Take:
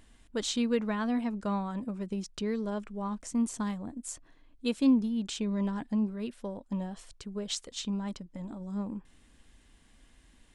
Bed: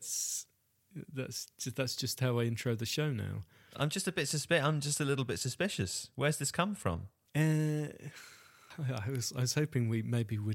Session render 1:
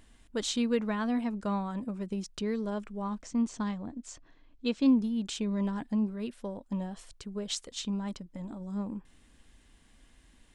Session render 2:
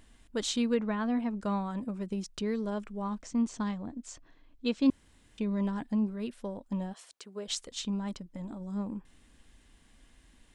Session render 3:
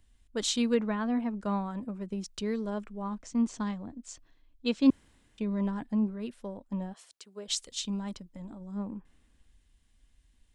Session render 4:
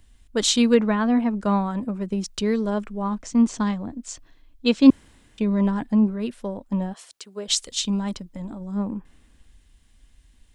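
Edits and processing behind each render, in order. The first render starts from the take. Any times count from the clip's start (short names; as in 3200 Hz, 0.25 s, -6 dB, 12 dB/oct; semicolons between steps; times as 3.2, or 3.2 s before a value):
3.21–4.86 LPF 6400 Hz 24 dB/oct
0.74–1.35 LPF 2700 Hz 6 dB/oct; 4.9–5.38 room tone; 6.92–7.47 HPF 640 Hz -> 280 Hz
three-band expander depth 40%
gain +9.5 dB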